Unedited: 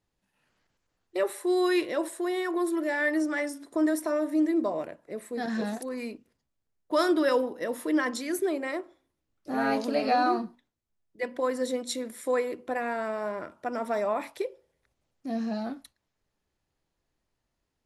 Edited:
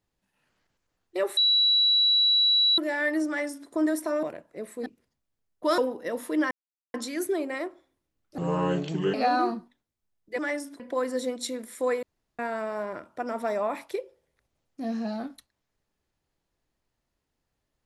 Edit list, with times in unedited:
0:01.37–0:02.78: beep over 3,920 Hz −18 dBFS
0:03.28–0:03.69: duplicate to 0:11.26
0:04.23–0:04.77: remove
0:05.40–0:06.14: remove
0:07.06–0:07.34: remove
0:08.07: splice in silence 0.43 s
0:09.51–0:10.01: play speed 66%
0:12.49–0:12.85: fill with room tone

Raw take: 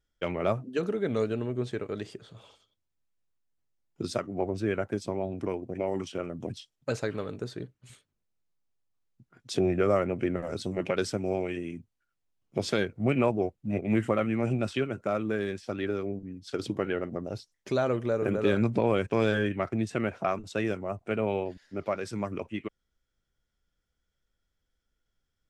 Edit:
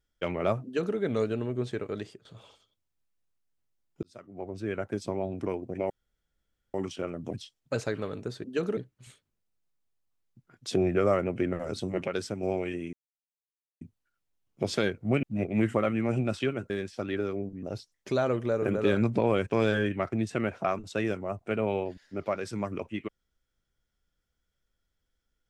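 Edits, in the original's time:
0:00.64–0:00.97: duplicate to 0:07.60
0:01.99–0:02.25: fade out, to −18 dB
0:04.03–0:05.09: fade in linear
0:05.90: splice in room tone 0.84 s
0:10.89–0:11.26: clip gain −3.5 dB
0:11.76: splice in silence 0.88 s
0:13.18–0:13.57: remove
0:15.04–0:15.40: remove
0:16.33–0:17.23: remove

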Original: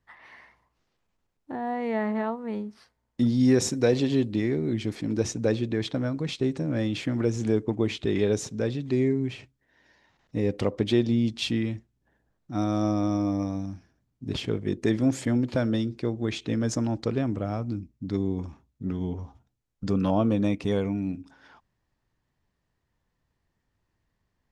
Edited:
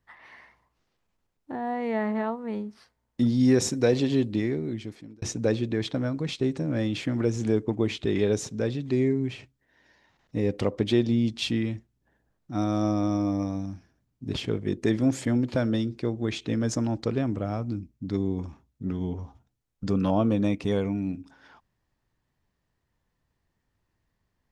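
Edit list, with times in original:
0:04.37–0:05.22: fade out

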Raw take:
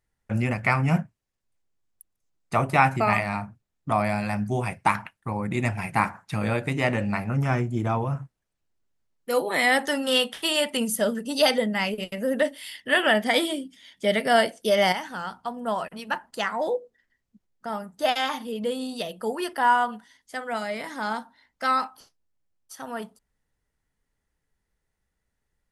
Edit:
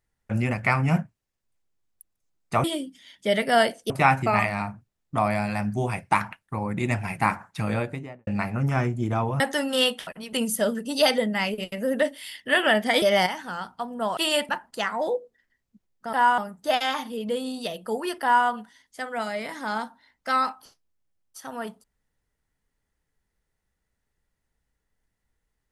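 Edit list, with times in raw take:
0:06.40–0:07.01: fade out and dull
0:08.14–0:09.74: remove
0:10.41–0:10.73: swap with 0:15.83–0:16.09
0:13.42–0:14.68: move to 0:02.64
0:19.57–0:19.82: duplicate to 0:17.73

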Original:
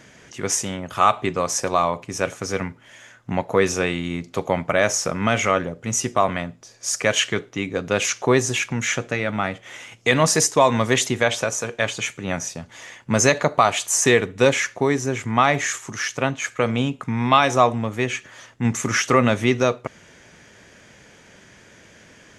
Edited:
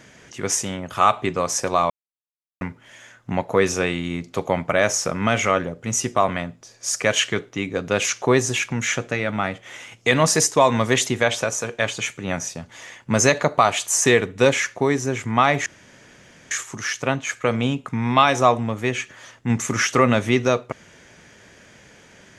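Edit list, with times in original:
0:01.90–0:02.61: silence
0:15.66: splice in room tone 0.85 s

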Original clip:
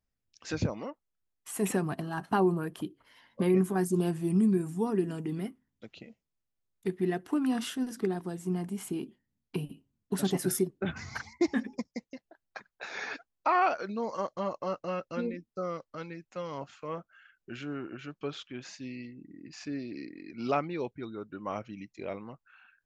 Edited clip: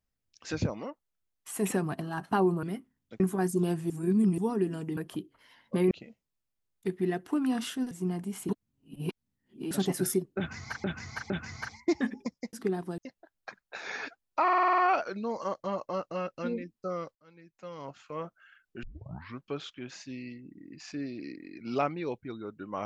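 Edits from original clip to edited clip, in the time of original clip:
0:02.63–0:03.57: swap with 0:05.34–0:05.91
0:04.27–0:04.75: reverse
0:07.91–0:08.36: move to 0:12.06
0:08.94–0:10.16: reverse
0:10.83–0:11.29: repeat, 3 plays
0:13.51: stutter 0.05 s, 8 plays
0:15.88–0:16.89: fade in
0:17.56: tape start 0.61 s

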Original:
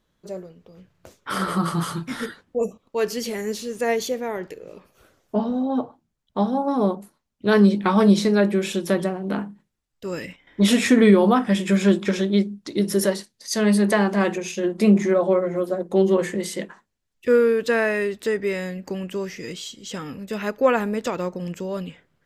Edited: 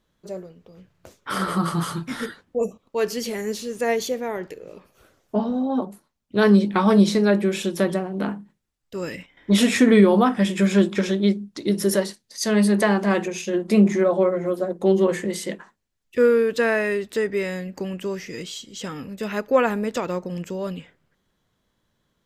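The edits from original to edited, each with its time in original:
0:05.82–0:06.92: remove

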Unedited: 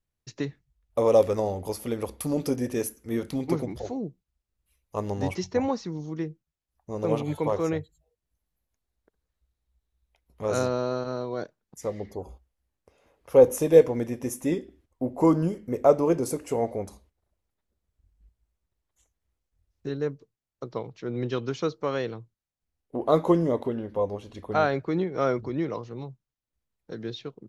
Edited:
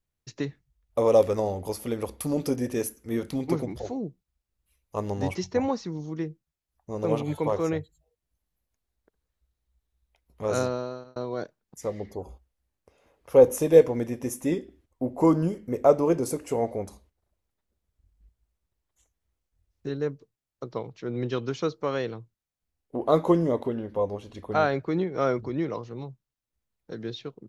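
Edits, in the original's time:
0:10.59–0:11.16: fade out

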